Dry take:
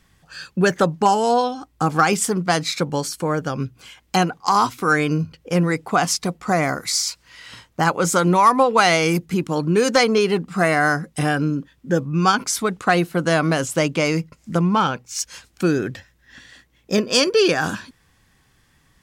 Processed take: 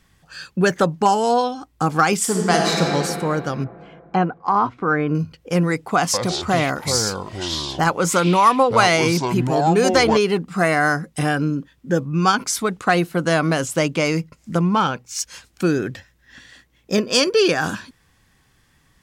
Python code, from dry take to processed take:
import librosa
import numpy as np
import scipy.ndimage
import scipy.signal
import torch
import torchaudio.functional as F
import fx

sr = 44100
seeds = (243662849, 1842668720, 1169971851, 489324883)

y = fx.reverb_throw(x, sr, start_s=2.21, length_s=0.69, rt60_s=2.7, drr_db=-1.0)
y = fx.lowpass(y, sr, hz=1500.0, slope=12, at=(3.64, 5.15))
y = fx.echo_pitch(y, sr, ms=165, semitones=-6, count=2, db_per_echo=-6.0, at=(5.97, 10.17))